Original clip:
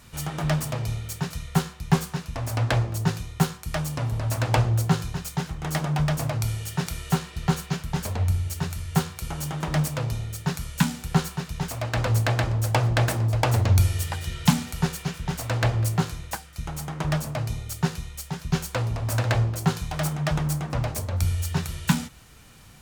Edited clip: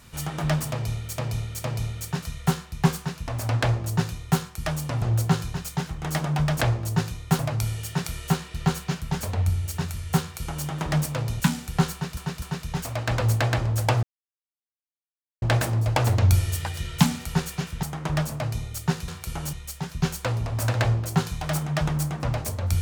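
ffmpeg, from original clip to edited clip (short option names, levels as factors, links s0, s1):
-filter_complex "[0:a]asplit=13[s0][s1][s2][s3][s4][s5][s6][s7][s8][s9][s10][s11][s12];[s0]atrim=end=1.182[s13];[s1]atrim=start=0.718:end=1.182[s14];[s2]atrim=start=0.718:end=4.102[s15];[s3]atrim=start=4.618:end=6.212[s16];[s4]atrim=start=2.698:end=3.482[s17];[s5]atrim=start=6.208:end=10.222[s18];[s6]atrim=start=10.758:end=11.532[s19];[s7]atrim=start=11.278:end=11.532[s20];[s8]atrim=start=11.278:end=12.89,asetpts=PTS-STARTPTS,afade=t=out:st=1.608:d=0.004:c=hsin,apad=pad_dur=1.39[s21];[s9]atrim=start=12.89:end=15.302,asetpts=PTS-STARTPTS,afade=t=in:d=0.004:c=hsin[s22];[s10]atrim=start=16.778:end=18.032[s23];[s11]atrim=start=9.028:end=9.482[s24];[s12]atrim=start=18.028[s25];[s13][s14]acrossfade=d=0.004:c1=hsin:c2=hsin[s26];[s26][s15]acrossfade=d=0.004:c1=hsin:c2=hsin[s27];[s27][s16]acrossfade=d=0.004:c1=hsin:c2=hsin[s28];[s28][s17]acrossfade=d=0.004:c1=hsin:c2=hsin[s29];[s29][s18]acrossfade=d=0.004:c1=hsin:c2=hsin[s30];[s30][s19]acrossfade=d=0.004:c1=hsin:c2=hsin[s31];[s31][s20]acrossfade=d=0.004:c1=hsin:c2=hsin[s32];[s21][s22]concat=n=2:v=0:a=1[s33];[s32][s33]acrossfade=d=0.004:c1=hsin:c2=hsin[s34];[s34][s23]acrossfade=d=0.004:c1=hsin:c2=hsin[s35];[s35][s24]acrossfade=d=0.004:c1=hsin:c2=hsin[s36];[s36][s25]acrossfade=d=0.004:c1=hsin:c2=hsin"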